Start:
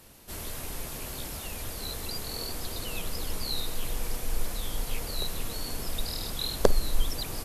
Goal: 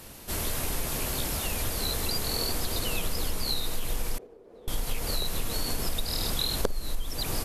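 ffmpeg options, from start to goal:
-filter_complex "[0:a]acompressor=threshold=0.0282:ratio=16,asettb=1/sr,asplit=3[s0][s1][s2];[s0]atrim=end=4.184[s3];[s1]atrim=start=4.18:end=4.68,asetpts=PTS-STARTPTS,afade=t=in:d=0.004:c=qsin,afade=t=out:st=0.496:d=0.004:c=qsin,bandpass=f=420:t=q:w=4.1:csg=0[s4];[s2]atrim=start=4.676[s5];[s3][s4]acrossfade=d=0.004:c1=hsin:c2=qsin[s6];[s6][s5]acrossfade=d=0.004:c1=qsin:c2=hsin,volume=2.37"

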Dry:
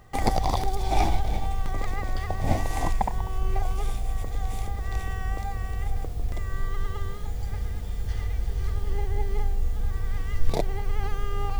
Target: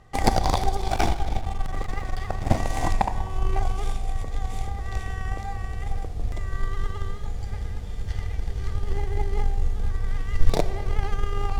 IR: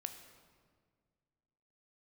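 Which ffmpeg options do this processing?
-filter_complex "[0:a]adynamicsmooth=sensitivity=7.5:basefreq=6300,asettb=1/sr,asplit=3[s0][s1][s2];[s0]atrim=end=0.814[s3];[s1]atrim=start=0.81:end=2.57,asetpts=PTS-STARTPTS,afade=t=in:d=0.004:c=qsin,afade=t=out:st=1.756:d=0.004:c=qsin,aeval=exprs='clip(val(0),-1,0.0422)':c=same[s4];[s2]atrim=start=2.566[s5];[s3][s4]acrossfade=d=0.004:c1=hsin:c2=qsin[s6];[s6][s5]acrossfade=d=0.004:c1=qsin:c2=hsin,highshelf=f=6700:g=9,aeval=exprs='0.473*(cos(1*acos(clip(val(0)/0.473,-1,1)))-cos(1*PI/2))+0.0299*(cos(7*acos(clip(val(0)/0.473,-1,1)))-cos(7*PI/2))':c=same,asplit=2[s7][s8];[1:a]atrim=start_sample=2205[s9];[s8][s9]afir=irnorm=-1:irlink=0,volume=1.78[s10];[s7][s10]amix=inputs=2:normalize=0,volume=0.708"

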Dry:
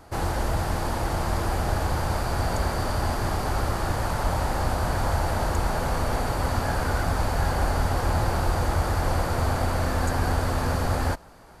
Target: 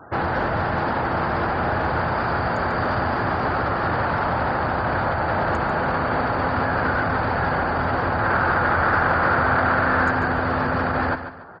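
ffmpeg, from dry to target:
-af "highpass=120,lowpass=4300,highshelf=f=2600:g=-6.5,alimiter=limit=0.075:level=0:latency=1:release=21,asetnsamples=n=441:p=0,asendcmd='8.19 equalizer g 13.5;10.1 equalizer g 7.5',equalizer=f=1500:w=1.6:g=6.5,afftfilt=real='re*gte(hypot(re,im),0.00355)':imag='im*gte(hypot(re,im),0.00355)':win_size=1024:overlap=0.75,aecho=1:1:144|288|432|576:0.299|0.0985|0.0325|0.0107,volume=2.11"

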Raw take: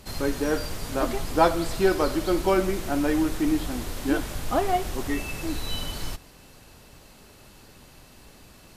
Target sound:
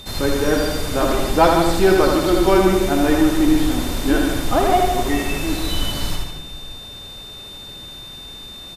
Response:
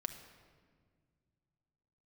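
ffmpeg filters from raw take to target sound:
-filter_complex "[0:a]aeval=exprs='val(0)+0.00631*sin(2*PI*3600*n/s)':c=same,asplit=2[s0][s1];[1:a]atrim=start_sample=2205,adelay=80[s2];[s1][s2]afir=irnorm=-1:irlink=0,volume=0.75[s3];[s0][s3]amix=inputs=2:normalize=0,acontrast=51,asplit=2[s4][s5];[s5]adelay=151.6,volume=0.447,highshelf=f=4000:g=-3.41[s6];[s4][s6]amix=inputs=2:normalize=0"

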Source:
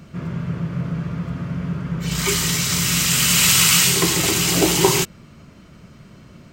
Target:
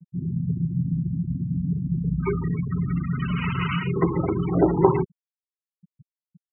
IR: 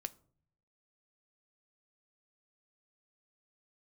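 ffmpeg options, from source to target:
-af "lowpass=1500,afftfilt=real='re*gte(hypot(re,im),0.1)':imag='im*gte(hypot(re,im),0.1)':win_size=1024:overlap=0.75"

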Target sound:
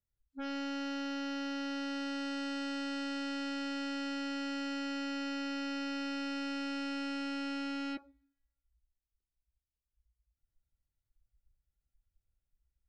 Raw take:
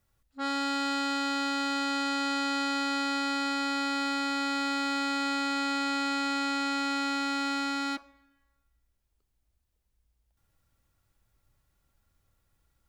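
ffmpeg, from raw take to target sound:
-af "asoftclip=type=tanh:threshold=0.0168,lowshelf=f=210:g=5.5,afftdn=nr=21:nf=-46,equalizer=f=1100:t=o:w=0.4:g=-12"

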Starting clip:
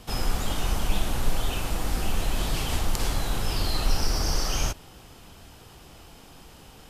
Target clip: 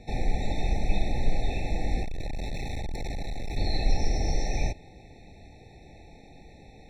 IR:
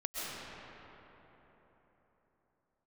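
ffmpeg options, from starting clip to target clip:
-filter_complex "[0:a]lowpass=4100,asettb=1/sr,asplit=3[s0][s1][s2];[s0]atrim=end=2.034[s3];[s1]atrim=start=2.03:end=3.57,asetpts=PTS-STARTPTS,afade=t=in:d=0.004:c=qsin,afade=t=out:st=1.536:d=0.004:c=qsin,asoftclip=type=hard:threshold=0.0355[s4];[s2]atrim=start=3.566[s5];[s3][s4]acrossfade=d=0.004:c1=hsin:c2=qsin[s6];[s6][s5]acrossfade=d=0.004:c1=qsin:c2=hsin,afftfilt=real='re*eq(mod(floor(b*sr/1024/880),2),0)':imag='im*eq(mod(floor(b*sr/1024/880),2),0)':win_size=1024:overlap=0.75"

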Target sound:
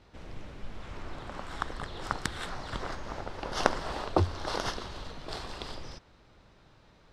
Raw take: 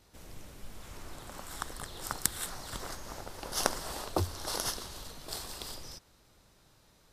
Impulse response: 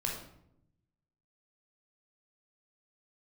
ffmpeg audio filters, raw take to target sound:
-af "lowpass=3200,volume=1.88"

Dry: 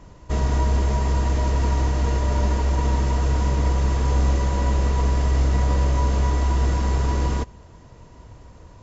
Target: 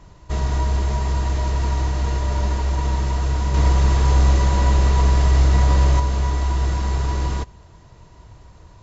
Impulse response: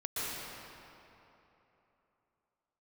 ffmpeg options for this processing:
-filter_complex "[0:a]equalizer=f=250:t=o:w=0.33:g=-9,equalizer=f=500:t=o:w=0.33:g=-6,equalizer=f=4000:t=o:w=0.33:g=4,asettb=1/sr,asplit=3[s0][s1][s2];[s0]atrim=end=3.544[s3];[s1]atrim=start=3.54:end=6,asetpts=PTS-STARTPTS,afade=t=in:d=0.004:c=qsin,afade=t=out:st=2.456:d=0.004:c=qsin,acontrast=22[s4];[s2]atrim=start=5.996[s5];[s3][s4]acrossfade=d=0.004:c1=hsin:c2=qsin[s6];[s6][s5]acrossfade=d=0.004:c1=qsin:c2=hsin"

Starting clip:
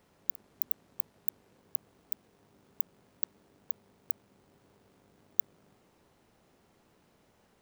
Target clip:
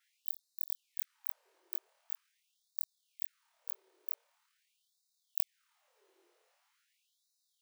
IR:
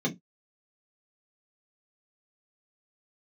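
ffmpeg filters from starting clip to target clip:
-af "afftfilt=real='re':imag='-im':win_size=2048:overlap=0.75,asubboost=boost=10.5:cutoff=210,afftfilt=real='re*gte(b*sr/1024,320*pow(3700/320,0.5+0.5*sin(2*PI*0.44*pts/sr)))':imag='im*gte(b*sr/1024,320*pow(3700/320,0.5+0.5*sin(2*PI*0.44*pts/sr)))':win_size=1024:overlap=0.75,volume=1.12"

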